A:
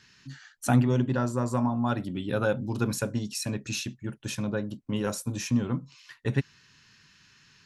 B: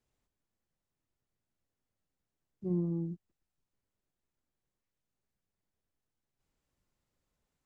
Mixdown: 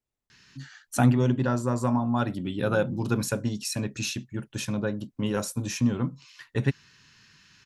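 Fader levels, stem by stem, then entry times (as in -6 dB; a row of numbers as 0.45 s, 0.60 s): +1.5 dB, -6.5 dB; 0.30 s, 0.00 s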